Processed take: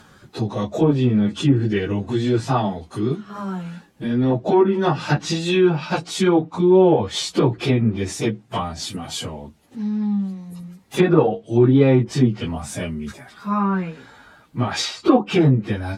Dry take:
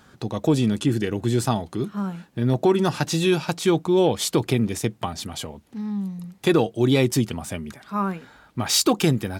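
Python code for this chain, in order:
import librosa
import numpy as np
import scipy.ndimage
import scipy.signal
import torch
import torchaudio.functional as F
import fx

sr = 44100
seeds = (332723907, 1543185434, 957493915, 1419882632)

y = fx.stretch_vocoder_free(x, sr, factor=1.7)
y = fx.env_lowpass_down(y, sr, base_hz=1600.0, full_db=-18.0)
y = y * librosa.db_to_amplitude(6.0)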